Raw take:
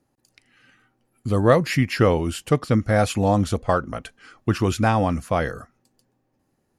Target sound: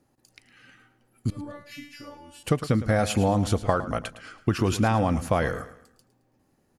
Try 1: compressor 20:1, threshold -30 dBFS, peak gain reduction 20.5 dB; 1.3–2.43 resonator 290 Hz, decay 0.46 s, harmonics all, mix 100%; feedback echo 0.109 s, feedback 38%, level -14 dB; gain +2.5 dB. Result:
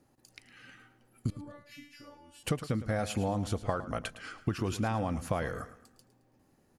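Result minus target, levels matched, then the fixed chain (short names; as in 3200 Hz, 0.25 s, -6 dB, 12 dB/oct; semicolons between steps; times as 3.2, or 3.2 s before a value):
compressor: peak gain reduction +9 dB
compressor 20:1, threshold -20.5 dBFS, peak gain reduction 11.5 dB; 1.3–2.43 resonator 290 Hz, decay 0.46 s, harmonics all, mix 100%; feedback echo 0.109 s, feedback 38%, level -14 dB; gain +2.5 dB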